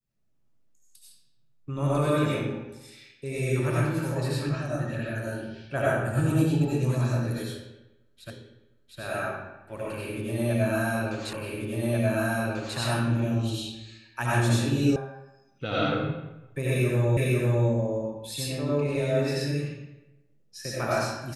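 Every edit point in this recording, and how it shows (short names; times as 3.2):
8.3 repeat of the last 0.71 s
11.33 repeat of the last 1.44 s
14.96 sound cut off
17.17 repeat of the last 0.5 s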